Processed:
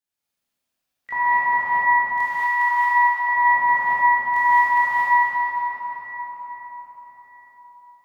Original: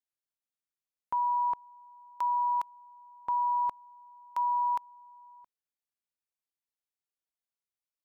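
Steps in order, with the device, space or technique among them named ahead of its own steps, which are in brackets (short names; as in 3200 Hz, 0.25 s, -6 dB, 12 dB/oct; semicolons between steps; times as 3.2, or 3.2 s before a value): shimmer-style reverb (harmoniser +12 st -6 dB; reverb RT60 5.4 s, pre-delay 13 ms, DRR -10.5 dB); 1.16–1.59 HPF 110 Hz; 2.25–3.35 HPF 1400 Hz -> 420 Hz 24 dB/oct; non-linear reverb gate 0.25 s rising, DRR -4 dB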